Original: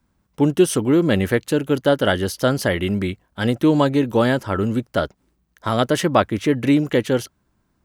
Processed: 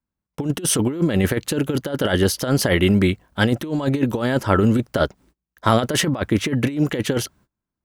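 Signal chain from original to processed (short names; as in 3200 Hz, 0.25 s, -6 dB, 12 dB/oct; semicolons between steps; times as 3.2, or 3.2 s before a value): negative-ratio compressor -20 dBFS, ratio -0.5; gate -52 dBFS, range -25 dB; gain +2.5 dB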